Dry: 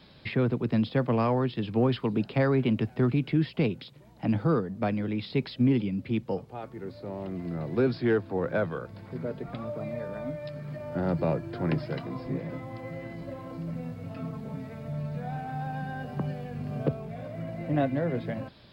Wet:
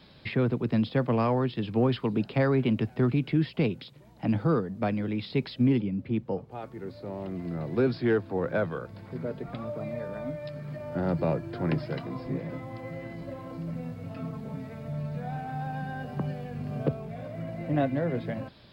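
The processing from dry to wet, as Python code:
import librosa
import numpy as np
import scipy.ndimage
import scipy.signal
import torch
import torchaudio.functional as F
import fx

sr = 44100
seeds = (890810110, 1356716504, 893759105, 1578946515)

y = fx.high_shelf(x, sr, hz=fx.line((5.78, 2200.0), (6.5, 2800.0)), db=-11.0, at=(5.78, 6.5), fade=0.02)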